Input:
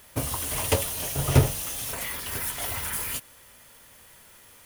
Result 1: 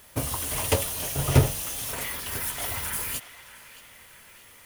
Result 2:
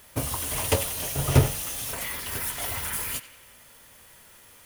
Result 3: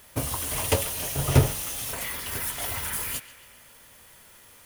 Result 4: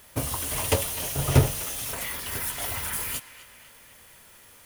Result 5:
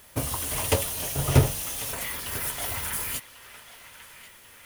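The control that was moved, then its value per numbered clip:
narrowing echo, time: 624, 91, 138, 252, 1093 ms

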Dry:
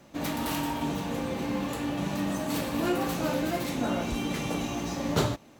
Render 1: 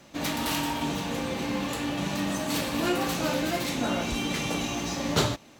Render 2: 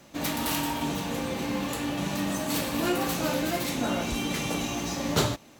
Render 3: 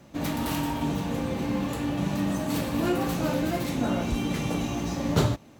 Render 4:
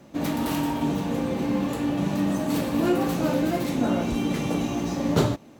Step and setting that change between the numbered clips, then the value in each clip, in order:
bell, frequency: 4300, 15000, 83, 240 Hz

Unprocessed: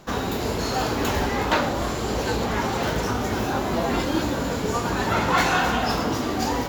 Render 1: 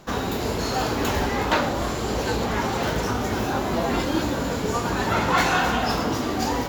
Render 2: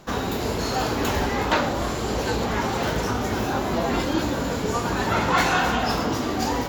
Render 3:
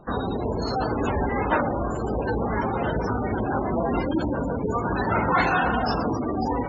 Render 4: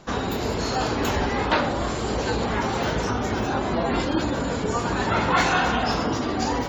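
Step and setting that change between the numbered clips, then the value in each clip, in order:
spectral gate, under each frame's peak: -55, -45, -15, -30 dB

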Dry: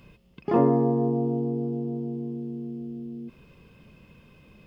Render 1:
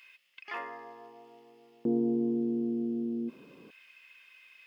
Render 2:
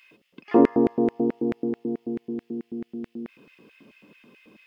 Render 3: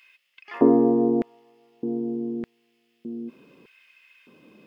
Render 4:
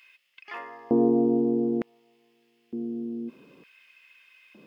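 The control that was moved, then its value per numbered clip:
LFO high-pass, rate: 0.27, 4.6, 0.82, 0.55 Hz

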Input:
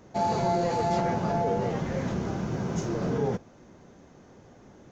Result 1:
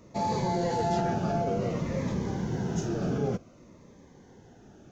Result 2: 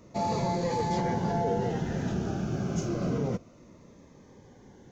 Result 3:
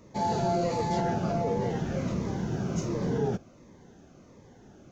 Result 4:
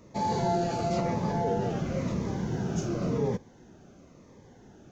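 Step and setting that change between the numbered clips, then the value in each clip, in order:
cascading phaser, rate: 0.55, 0.28, 1.4, 0.96 Hz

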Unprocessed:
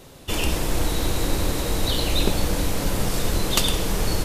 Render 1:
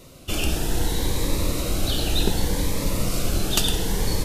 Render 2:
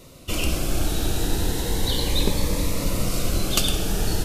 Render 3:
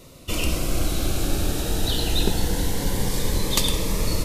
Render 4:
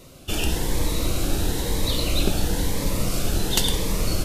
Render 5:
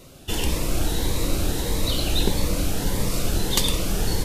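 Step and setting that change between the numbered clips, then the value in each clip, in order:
cascading phaser, rate: 0.67, 0.35, 0.23, 1, 1.6 Hz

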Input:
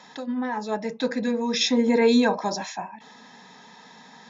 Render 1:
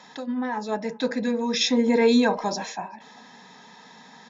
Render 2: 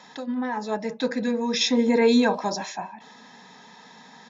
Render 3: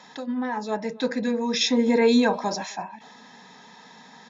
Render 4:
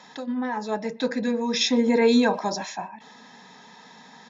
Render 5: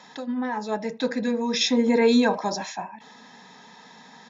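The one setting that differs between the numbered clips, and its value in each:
speakerphone echo, time: 390, 180, 260, 120, 80 ms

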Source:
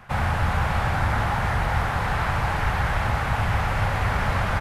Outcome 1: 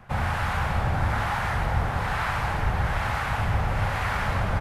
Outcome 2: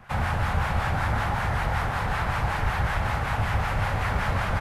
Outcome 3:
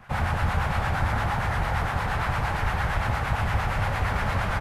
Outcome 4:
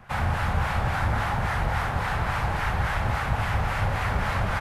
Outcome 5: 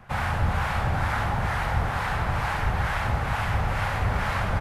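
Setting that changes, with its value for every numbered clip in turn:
harmonic tremolo, rate: 1.1, 5.3, 8.7, 3.6, 2.2 Hz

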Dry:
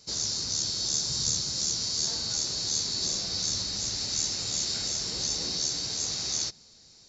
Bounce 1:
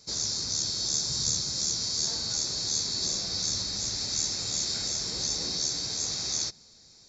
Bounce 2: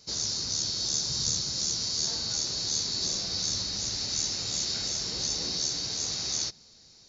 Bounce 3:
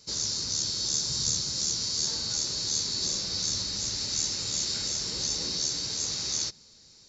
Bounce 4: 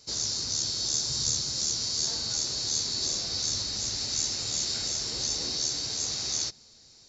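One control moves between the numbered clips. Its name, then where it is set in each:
notch, frequency: 2900, 7600, 710, 180 Hz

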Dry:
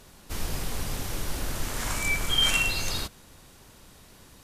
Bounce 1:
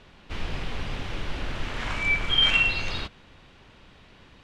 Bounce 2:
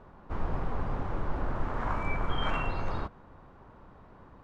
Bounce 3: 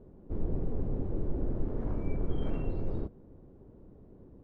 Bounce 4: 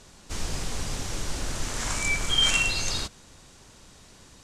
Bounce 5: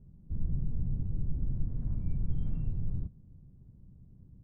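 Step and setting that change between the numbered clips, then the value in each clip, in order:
synth low-pass, frequency: 2900, 1100, 400, 7300, 150 Hz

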